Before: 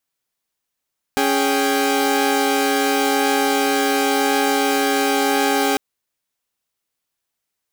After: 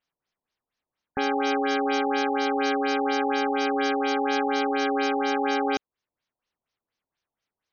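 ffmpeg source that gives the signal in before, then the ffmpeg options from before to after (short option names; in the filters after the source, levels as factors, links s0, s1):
-f lavfi -i "aevalsrc='0.126*((2*mod(277.18*t,1)-1)+(2*mod(415.3*t,1)-1)+(2*mod(783.99*t,1)-1))':d=4.6:s=44100"
-af "alimiter=limit=0.168:level=0:latency=1:release=397,afftfilt=real='re*lt(b*sr/1024,1000*pow(6800/1000,0.5+0.5*sin(2*PI*4.2*pts/sr)))':imag='im*lt(b*sr/1024,1000*pow(6800/1000,0.5+0.5*sin(2*PI*4.2*pts/sr)))':win_size=1024:overlap=0.75"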